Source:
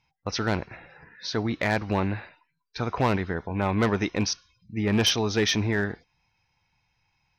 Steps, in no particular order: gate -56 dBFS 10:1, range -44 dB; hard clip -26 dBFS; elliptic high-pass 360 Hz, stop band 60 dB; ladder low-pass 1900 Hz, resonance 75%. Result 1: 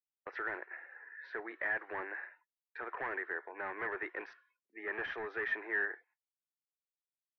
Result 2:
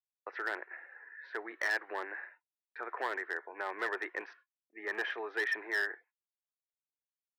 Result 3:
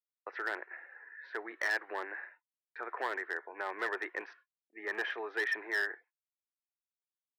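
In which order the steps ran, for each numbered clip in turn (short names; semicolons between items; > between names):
gate > elliptic high-pass > hard clip > ladder low-pass; ladder low-pass > gate > hard clip > elliptic high-pass; ladder low-pass > hard clip > gate > elliptic high-pass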